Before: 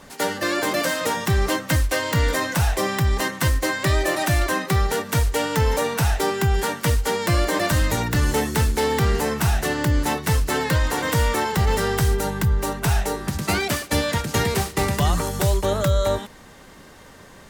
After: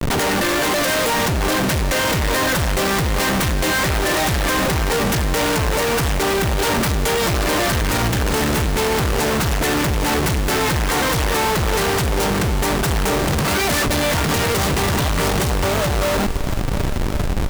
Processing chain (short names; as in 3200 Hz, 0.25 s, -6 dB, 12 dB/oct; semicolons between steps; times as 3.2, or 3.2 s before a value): in parallel at +2.5 dB: compressor 6:1, threshold -30 dBFS, peak gain reduction 14 dB; on the sum: Schmitt trigger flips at -31 dBFS; multi-head echo 0.365 s, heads all three, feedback 55%, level -18.5 dB